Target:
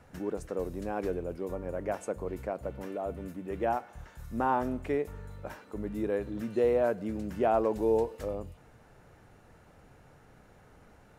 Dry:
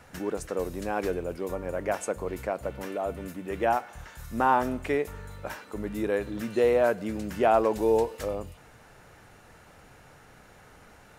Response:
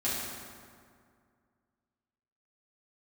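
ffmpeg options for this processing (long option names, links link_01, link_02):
-af "tiltshelf=frequency=920:gain=4.5,volume=-6dB"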